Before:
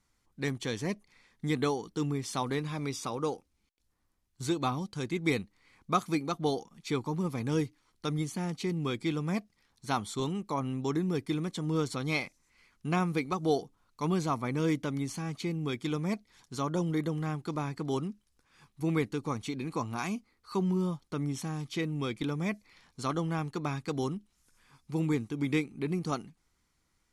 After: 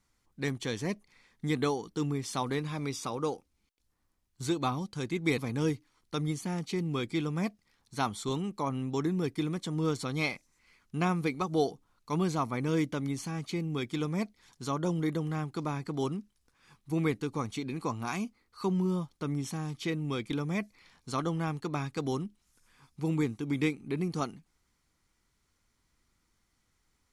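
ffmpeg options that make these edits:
-filter_complex "[0:a]asplit=2[a][b];[a]atrim=end=5.382[c];[b]atrim=start=7.288[d];[c][d]acrossfade=d=0.004:c1=hsin:c2=hsin"

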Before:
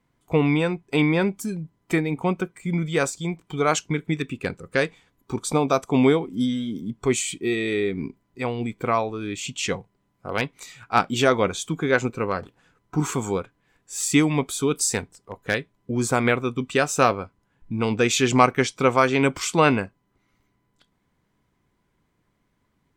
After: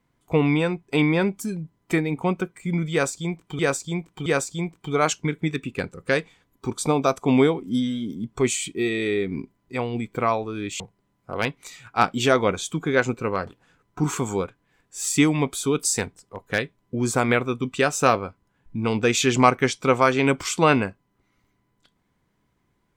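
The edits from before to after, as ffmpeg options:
-filter_complex "[0:a]asplit=4[a][b][c][d];[a]atrim=end=3.592[e];[b]atrim=start=2.918:end=3.592[f];[c]atrim=start=2.918:end=9.462[g];[d]atrim=start=9.758[h];[e][f]acrossfade=d=0.004:c1=hsin:c2=hsin[i];[i][g]acrossfade=d=0.004:c1=hsin:c2=hsin[j];[j][h]acrossfade=d=0.004:c1=hsin:c2=hsin"

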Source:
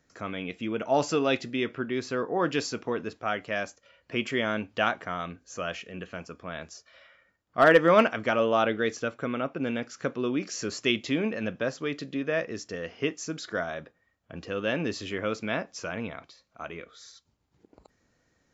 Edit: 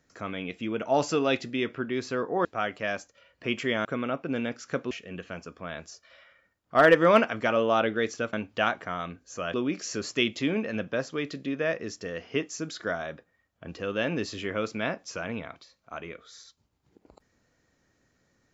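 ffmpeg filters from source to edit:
-filter_complex "[0:a]asplit=6[a][b][c][d][e][f];[a]atrim=end=2.452[g];[b]atrim=start=3.128:end=4.532[h];[c]atrim=start=9.158:end=10.222[i];[d]atrim=start=5.738:end=9.162[j];[e]atrim=start=4.528:end=5.742[k];[f]atrim=start=10.218[l];[g][h]acrossfade=d=0.004:c1=hsin:c2=hsin[m];[m][i]acrossfade=d=0.004:c1=hsin:c2=hsin[n];[n][j]acrossfade=d=0.004:c1=hsin:c2=hsin[o];[o][k]acrossfade=d=0.004:c1=hsin:c2=hsin[p];[p][l]acrossfade=d=0.004:c1=hsin:c2=hsin"

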